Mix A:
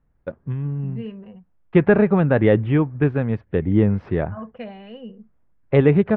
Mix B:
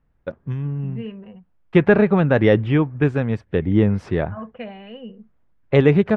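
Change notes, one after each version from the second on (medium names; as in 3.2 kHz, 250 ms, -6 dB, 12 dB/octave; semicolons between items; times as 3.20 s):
second voice: add low-pass 3 kHz 24 dB/octave; master: remove distance through air 330 m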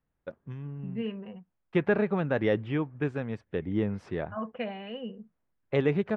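first voice -10.0 dB; master: add bass shelf 110 Hz -9.5 dB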